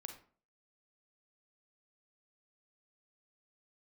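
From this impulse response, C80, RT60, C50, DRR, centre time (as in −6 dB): 12.5 dB, 0.45 s, 8.0 dB, 5.0 dB, 16 ms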